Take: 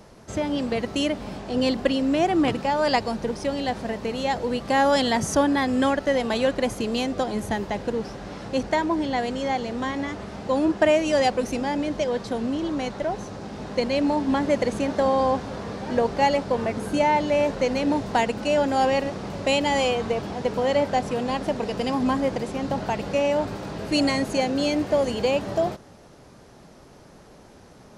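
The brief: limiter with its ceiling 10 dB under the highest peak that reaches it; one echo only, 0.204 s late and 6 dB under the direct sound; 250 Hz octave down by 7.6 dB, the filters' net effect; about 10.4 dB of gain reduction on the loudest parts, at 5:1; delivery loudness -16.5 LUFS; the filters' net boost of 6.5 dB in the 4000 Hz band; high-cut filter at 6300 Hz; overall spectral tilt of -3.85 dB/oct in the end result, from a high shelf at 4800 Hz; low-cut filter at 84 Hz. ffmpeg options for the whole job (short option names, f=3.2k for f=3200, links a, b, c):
-af "highpass=84,lowpass=6.3k,equalizer=f=250:t=o:g=-9,equalizer=f=4k:t=o:g=7.5,highshelf=f=4.8k:g=3.5,acompressor=threshold=-27dB:ratio=5,alimiter=level_in=0.5dB:limit=-24dB:level=0:latency=1,volume=-0.5dB,aecho=1:1:204:0.501,volume=16.5dB"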